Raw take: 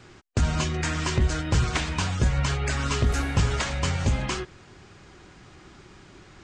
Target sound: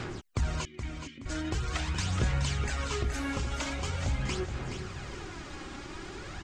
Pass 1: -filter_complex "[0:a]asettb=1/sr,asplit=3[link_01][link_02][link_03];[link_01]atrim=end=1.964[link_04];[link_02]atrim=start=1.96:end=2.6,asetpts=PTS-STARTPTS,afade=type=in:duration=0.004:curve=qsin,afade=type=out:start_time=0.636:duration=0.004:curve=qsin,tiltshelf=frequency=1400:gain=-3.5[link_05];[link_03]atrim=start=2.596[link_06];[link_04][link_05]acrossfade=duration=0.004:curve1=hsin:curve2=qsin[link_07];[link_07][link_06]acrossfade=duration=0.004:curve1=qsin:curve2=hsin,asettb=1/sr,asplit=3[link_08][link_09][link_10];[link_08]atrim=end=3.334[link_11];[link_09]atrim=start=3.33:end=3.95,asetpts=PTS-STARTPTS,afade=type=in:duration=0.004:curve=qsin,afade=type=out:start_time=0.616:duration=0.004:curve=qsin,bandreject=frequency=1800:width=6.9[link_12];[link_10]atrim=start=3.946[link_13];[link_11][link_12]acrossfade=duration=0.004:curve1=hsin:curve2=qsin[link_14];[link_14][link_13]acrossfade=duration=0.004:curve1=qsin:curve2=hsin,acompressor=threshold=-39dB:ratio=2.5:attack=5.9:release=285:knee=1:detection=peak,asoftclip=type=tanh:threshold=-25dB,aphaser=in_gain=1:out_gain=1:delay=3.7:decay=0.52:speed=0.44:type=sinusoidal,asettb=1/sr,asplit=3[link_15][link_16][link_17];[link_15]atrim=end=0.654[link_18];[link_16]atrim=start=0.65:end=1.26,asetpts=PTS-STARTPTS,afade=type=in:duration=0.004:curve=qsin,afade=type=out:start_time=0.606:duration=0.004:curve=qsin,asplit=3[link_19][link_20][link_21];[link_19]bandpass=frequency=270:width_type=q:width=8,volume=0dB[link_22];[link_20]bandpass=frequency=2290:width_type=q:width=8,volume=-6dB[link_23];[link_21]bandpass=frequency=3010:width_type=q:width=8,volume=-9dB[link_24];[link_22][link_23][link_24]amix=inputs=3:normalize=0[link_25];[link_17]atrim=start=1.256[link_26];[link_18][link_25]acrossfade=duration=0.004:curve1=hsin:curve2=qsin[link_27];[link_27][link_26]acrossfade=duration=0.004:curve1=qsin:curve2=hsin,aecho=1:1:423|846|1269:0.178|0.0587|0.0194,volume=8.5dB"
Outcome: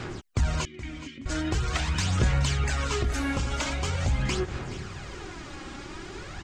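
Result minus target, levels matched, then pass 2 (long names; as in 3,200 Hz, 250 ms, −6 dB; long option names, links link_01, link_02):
downward compressor: peak gain reduction −5.5 dB; echo-to-direct −6.5 dB
-filter_complex "[0:a]asettb=1/sr,asplit=3[link_01][link_02][link_03];[link_01]atrim=end=1.964[link_04];[link_02]atrim=start=1.96:end=2.6,asetpts=PTS-STARTPTS,afade=type=in:duration=0.004:curve=qsin,afade=type=out:start_time=0.636:duration=0.004:curve=qsin,tiltshelf=frequency=1400:gain=-3.5[link_05];[link_03]atrim=start=2.596[link_06];[link_04][link_05]acrossfade=duration=0.004:curve1=hsin:curve2=qsin[link_07];[link_07][link_06]acrossfade=duration=0.004:curve1=qsin:curve2=hsin,asettb=1/sr,asplit=3[link_08][link_09][link_10];[link_08]atrim=end=3.334[link_11];[link_09]atrim=start=3.33:end=3.95,asetpts=PTS-STARTPTS,afade=type=in:duration=0.004:curve=qsin,afade=type=out:start_time=0.616:duration=0.004:curve=qsin,bandreject=frequency=1800:width=6.9[link_12];[link_10]atrim=start=3.946[link_13];[link_11][link_12]acrossfade=duration=0.004:curve1=hsin:curve2=qsin[link_14];[link_14][link_13]acrossfade=duration=0.004:curve1=qsin:curve2=hsin,acompressor=threshold=-48dB:ratio=2.5:attack=5.9:release=285:knee=1:detection=peak,asoftclip=type=tanh:threshold=-25dB,aphaser=in_gain=1:out_gain=1:delay=3.7:decay=0.52:speed=0.44:type=sinusoidal,asettb=1/sr,asplit=3[link_15][link_16][link_17];[link_15]atrim=end=0.654[link_18];[link_16]atrim=start=0.65:end=1.26,asetpts=PTS-STARTPTS,afade=type=in:duration=0.004:curve=qsin,afade=type=out:start_time=0.606:duration=0.004:curve=qsin,asplit=3[link_19][link_20][link_21];[link_19]bandpass=frequency=270:width_type=q:width=8,volume=0dB[link_22];[link_20]bandpass=frequency=2290:width_type=q:width=8,volume=-6dB[link_23];[link_21]bandpass=frequency=3010:width_type=q:width=8,volume=-9dB[link_24];[link_22][link_23][link_24]amix=inputs=3:normalize=0[link_25];[link_17]atrim=start=1.256[link_26];[link_18][link_25]acrossfade=duration=0.004:curve1=hsin:curve2=qsin[link_27];[link_27][link_26]acrossfade=duration=0.004:curve1=qsin:curve2=hsin,aecho=1:1:423|846|1269|1692:0.376|0.124|0.0409|0.0135,volume=8.5dB"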